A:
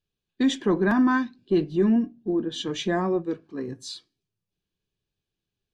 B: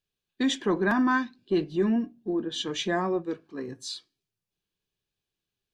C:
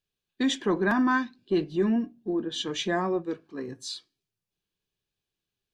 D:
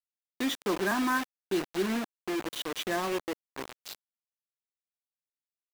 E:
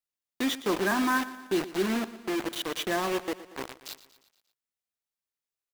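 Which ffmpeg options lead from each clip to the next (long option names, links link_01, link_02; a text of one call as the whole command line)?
ffmpeg -i in.wav -af "lowshelf=frequency=430:gain=-7,volume=1dB" out.wav
ffmpeg -i in.wav -af anull out.wav
ffmpeg -i in.wav -af "acrusher=bits=4:mix=0:aa=0.000001,bass=frequency=250:gain=-7,treble=frequency=4000:gain=-4,volume=-3dB" out.wav
ffmpeg -i in.wav -af "aecho=1:1:117|234|351|468|585:0.158|0.0888|0.0497|0.0278|0.0156,volume=2dB" out.wav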